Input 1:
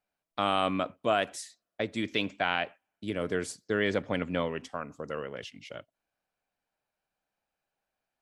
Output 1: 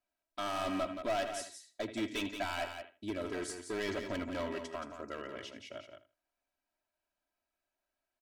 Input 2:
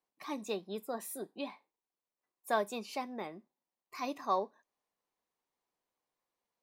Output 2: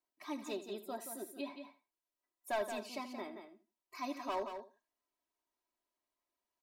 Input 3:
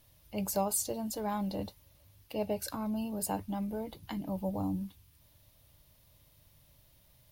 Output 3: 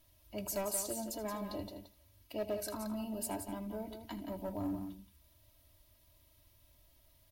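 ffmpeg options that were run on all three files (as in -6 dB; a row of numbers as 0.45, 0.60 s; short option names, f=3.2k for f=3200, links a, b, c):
-filter_complex "[0:a]asplit=2[a][b];[b]aecho=0:1:79|158:0.178|0.0338[c];[a][c]amix=inputs=2:normalize=0,volume=27.5dB,asoftclip=hard,volume=-27.5dB,aecho=1:1:3.1:0.76,asplit=2[d][e];[e]aecho=0:1:175:0.398[f];[d][f]amix=inputs=2:normalize=0,volume=-5.5dB"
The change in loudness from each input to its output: -7.0, -4.0, -4.5 LU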